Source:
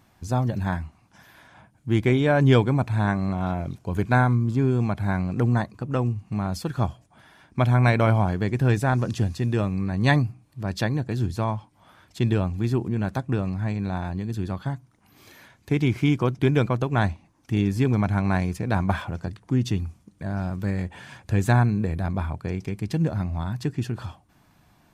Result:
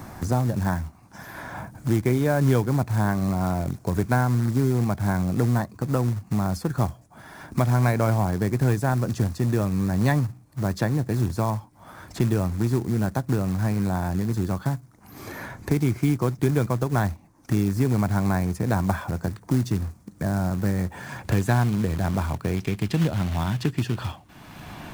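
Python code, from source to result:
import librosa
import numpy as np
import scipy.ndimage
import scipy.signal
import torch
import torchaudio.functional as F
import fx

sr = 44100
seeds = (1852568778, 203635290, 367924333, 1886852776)

y = fx.quant_float(x, sr, bits=2)
y = fx.peak_eq(y, sr, hz=3000.0, db=fx.steps((0.0, -10.0), (21.18, -2.5), (22.57, 5.0)), octaves=0.96)
y = fx.band_squash(y, sr, depth_pct=70)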